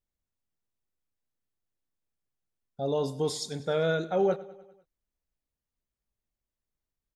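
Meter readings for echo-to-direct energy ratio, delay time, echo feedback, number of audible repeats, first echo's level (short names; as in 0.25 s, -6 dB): -16.5 dB, 99 ms, 58%, 4, -18.5 dB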